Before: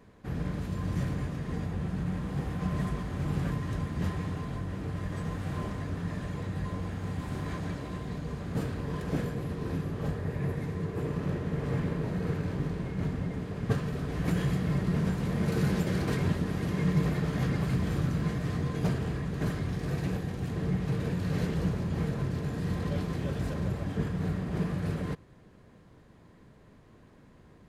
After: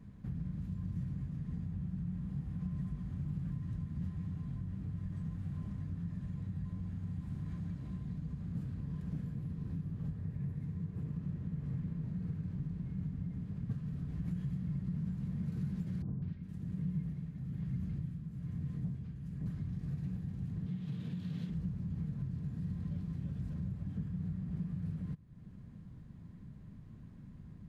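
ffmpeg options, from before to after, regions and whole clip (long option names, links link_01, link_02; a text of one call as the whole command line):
ffmpeg -i in.wav -filter_complex "[0:a]asettb=1/sr,asplit=3[link_01][link_02][link_03];[link_01]atrim=end=16.024[link_04];[link_02]atrim=start=16.02:end=19.46,asetpts=PTS-STARTPTS,afade=type=in:duration=0.004:curve=qsin,afade=type=out:start_time=3.436:duration=0.004:curve=qsin,acrossover=split=1100|4900[link_05][link_06][link_07];[link_06]adelay=200[link_08];[link_07]adelay=410[link_09];[link_05][link_08][link_09]amix=inputs=3:normalize=0,atrim=end_sample=151704,tremolo=f=1.1:d=0.75[link_10];[link_03]atrim=start=19.456[link_11];[link_04][link_10]acrossfade=duration=0.004:curve1=hsin:curve2=qsin[link_12];[link_12][link_11]acrossfade=duration=0.004:curve1=qsin:curve2=hsin,asettb=1/sr,asplit=3[link_13][link_14][link_15];[link_13]atrim=end=20.664[link_16];[link_14]atrim=start=20.66:end=21.5,asetpts=PTS-STARTPTS,afade=type=in:duration=0.004:curve=qsin,afade=type=out:start_time=0.836:duration=0.004:curve=qsin,highpass=160,equalizer=frequency=3400:width_type=o:width=0.77:gain=12.5[link_17];[link_15]atrim=start=21.496[link_18];[link_16][link_17]acrossfade=duration=0.004:curve1=hsin:curve2=qsin[link_19];[link_19][link_18]acrossfade=duration=0.004:curve1=qsin:curve2=hsin,lowshelf=frequency=280:width_type=q:width=1.5:gain=14,acompressor=threshold=-34dB:ratio=2.5,volume=-9dB" out.wav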